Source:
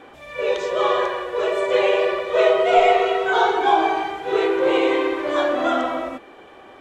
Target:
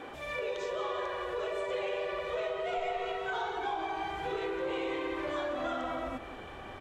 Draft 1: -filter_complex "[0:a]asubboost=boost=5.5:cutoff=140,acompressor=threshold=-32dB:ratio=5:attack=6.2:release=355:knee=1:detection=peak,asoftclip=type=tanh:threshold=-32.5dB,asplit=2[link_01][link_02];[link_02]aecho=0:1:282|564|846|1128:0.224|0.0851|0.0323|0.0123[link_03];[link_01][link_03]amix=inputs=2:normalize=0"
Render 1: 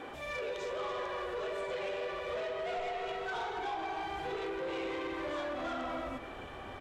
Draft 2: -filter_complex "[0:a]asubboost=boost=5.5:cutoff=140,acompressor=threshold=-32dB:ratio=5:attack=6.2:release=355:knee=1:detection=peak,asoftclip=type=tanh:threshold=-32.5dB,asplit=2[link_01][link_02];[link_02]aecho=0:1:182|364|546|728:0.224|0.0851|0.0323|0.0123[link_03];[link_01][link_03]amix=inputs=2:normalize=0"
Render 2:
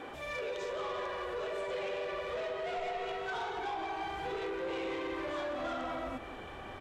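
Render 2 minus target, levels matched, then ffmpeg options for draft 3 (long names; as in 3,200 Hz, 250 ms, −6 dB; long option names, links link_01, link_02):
soft clipping: distortion +14 dB
-filter_complex "[0:a]asubboost=boost=5.5:cutoff=140,acompressor=threshold=-32dB:ratio=5:attack=6.2:release=355:knee=1:detection=peak,asoftclip=type=tanh:threshold=-23dB,asplit=2[link_01][link_02];[link_02]aecho=0:1:182|364|546|728:0.224|0.0851|0.0323|0.0123[link_03];[link_01][link_03]amix=inputs=2:normalize=0"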